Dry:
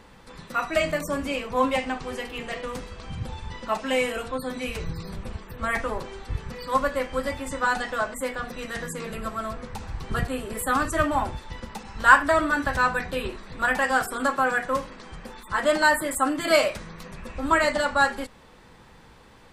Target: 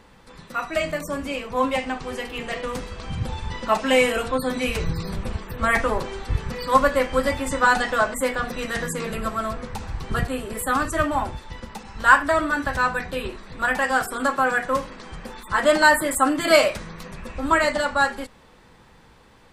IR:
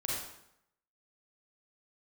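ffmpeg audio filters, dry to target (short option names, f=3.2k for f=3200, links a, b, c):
-af "dynaudnorm=f=240:g=21:m=11.5dB,volume=-1dB"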